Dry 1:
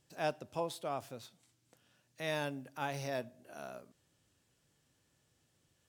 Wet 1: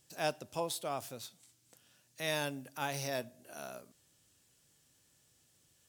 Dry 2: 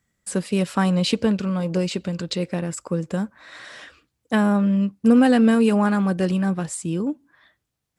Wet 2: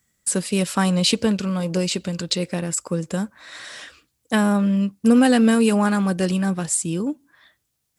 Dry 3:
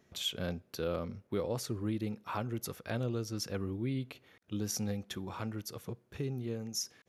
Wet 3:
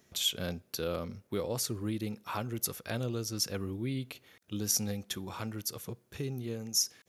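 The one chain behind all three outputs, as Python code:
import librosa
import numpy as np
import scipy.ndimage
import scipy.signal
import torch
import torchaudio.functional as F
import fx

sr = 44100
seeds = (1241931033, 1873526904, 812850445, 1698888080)

y = fx.high_shelf(x, sr, hz=4000.0, db=11.5)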